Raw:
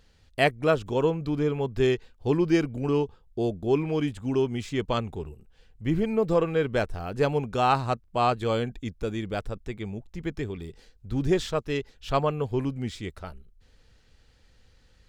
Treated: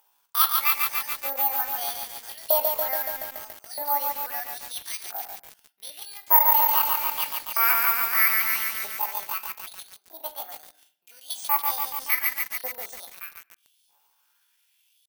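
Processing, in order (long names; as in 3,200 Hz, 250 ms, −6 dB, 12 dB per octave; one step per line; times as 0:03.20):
dynamic equaliser 790 Hz, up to −4 dB, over −42 dBFS, Q 4.4
auto-filter high-pass saw up 0.79 Hz 430–2,200 Hz
pitch shifter +10.5 semitones
bad sample-rate conversion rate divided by 3×, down filtered, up zero stuff
convolution reverb RT60 0.65 s, pre-delay 7 ms, DRR 8.5 dB
feedback echo at a low word length 142 ms, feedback 80%, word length 5 bits, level −3 dB
level −5 dB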